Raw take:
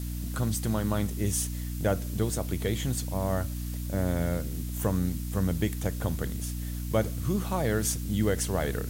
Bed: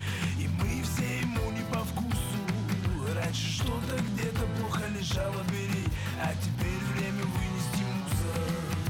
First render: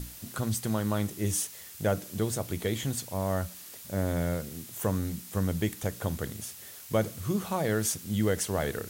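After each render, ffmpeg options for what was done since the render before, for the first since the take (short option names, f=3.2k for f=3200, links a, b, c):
-af "bandreject=f=60:t=h:w=6,bandreject=f=120:t=h:w=6,bandreject=f=180:t=h:w=6,bandreject=f=240:t=h:w=6,bandreject=f=300:t=h:w=6"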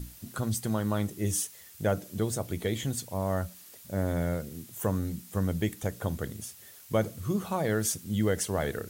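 -af "afftdn=nr=6:nf=-46"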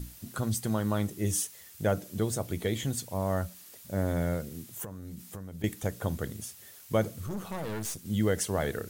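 -filter_complex "[0:a]asettb=1/sr,asplit=3[a][b][c];[a]atrim=end=4.844[d];[b]atrim=start=4.84:end=5.64,asetpts=PTS-STARTPTS,afade=t=in:d=0.004:c=qsin,afade=t=out:st=0.796:d=0.004:c=qsin,acompressor=threshold=-37dB:ratio=16:attack=3.2:release=140:knee=1:detection=peak[e];[c]atrim=start=5.636[f];[d][e]acrossfade=d=0.004:c1=hsin:c2=qsin[g];[g][f]acrossfade=d=0.004:c1=qsin:c2=hsin,asettb=1/sr,asplit=3[h][i][j];[h]atrim=end=7.264[k];[i]atrim=start=7.26:end=8.05,asetpts=PTS-STARTPTS,afade=t=in:d=0.004:c=qsin,afade=t=out:st=0.786:d=0.004:c=qsin,aeval=exprs='(tanh(39.8*val(0)+0.6)-tanh(0.6))/39.8':c=same[l];[j]atrim=start=8.046[m];[k][l]acrossfade=d=0.004:c1=hsin:c2=qsin[n];[n][m]acrossfade=d=0.004:c1=qsin:c2=hsin"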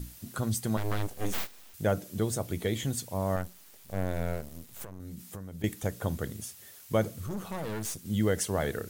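-filter_complex "[0:a]asettb=1/sr,asplit=3[a][b][c];[a]atrim=end=0.774[d];[b]atrim=start=0.77:end=1.74,asetpts=PTS-STARTPTS,afade=t=in:d=0.004:c=qsin,afade=t=out:st=0.966:d=0.004:c=qsin,aeval=exprs='abs(val(0))':c=same[e];[c]atrim=start=1.736[f];[d][e]acrossfade=d=0.004:c1=hsin:c2=qsin[g];[g][f]acrossfade=d=0.004:c1=qsin:c2=hsin,asettb=1/sr,asplit=3[h][i][j];[h]atrim=end=3.364[k];[i]atrim=start=3.36:end=5,asetpts=PTS-STARTPTS,afade=t=in:d=0.004:c=qsin,afade=t=out:st=1.636:d=0.004:c=qsin,aeval=exprs='max(val(0),0)':c=same[l];[j]atrim=start=4.996[m];[k][l]acrossfade=d=0.004:c1=hsin:c2=qsin[n];[n][m]acrossfade=d=0.004:c1=qsin:c2=hsin"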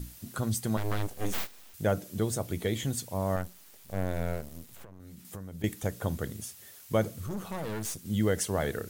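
-filter_complex "[0:a]asettb=1/sr,asplit=3[a][b][c];[a]atrim=end=4.754[d];[b]atrim=start=4.75:end=5.25,asetpts=PTS-STARTPTS,afade=t=in:d=0.004:c=qsin,afade=t=out:st=0.496:d=0.004:c=qsin,acrossover=split=630|4100[e][f][g];[e]acompressor=threshold=-46dB:ratio=4[h];[f]acompressor=threshold=-56dB:ratio=4[i];[g]acompressor=threshold=-58dB:ratio=4[j];[h][i][j]amix=inputs=3:normalize=0[k];[c]atrim=start=5.246[l];[d][k]acrossfade=d=0.004:c1=hsin:c2=qsin[m];[m][l]acrossfade=d=0.004:c1=qsin:c2=hsin"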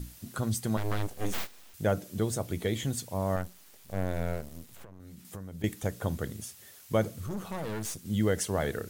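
-af "highshelf=f=11k:g=-3.5"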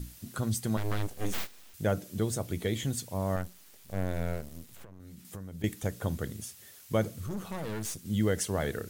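-af "equalizer=f=790:t=o:w=1.7:g=-2.5"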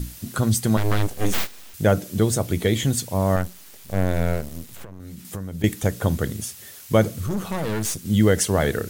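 -af "volume=10.5dB"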